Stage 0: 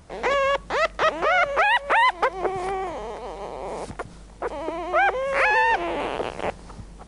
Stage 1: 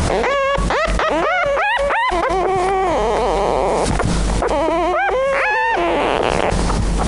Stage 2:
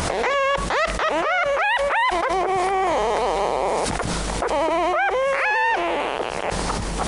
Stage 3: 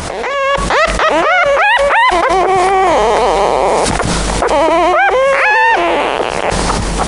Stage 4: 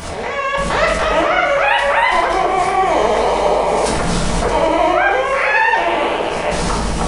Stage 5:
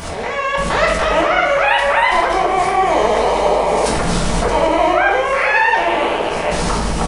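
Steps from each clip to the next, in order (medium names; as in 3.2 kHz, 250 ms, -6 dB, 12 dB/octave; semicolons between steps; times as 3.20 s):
level flattener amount 100%
bass shelf 320 Hz -9.5 dB; peak limiter -10 dBFS, peak gain reduction 8 dB; trim -1.5 dB
level rider gain up to 9 dB; trim +2.5 dB
simulated room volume 280 m³, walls mixed, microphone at 1.6 m; trim -9 dB
delay 245 ms -21.5 dB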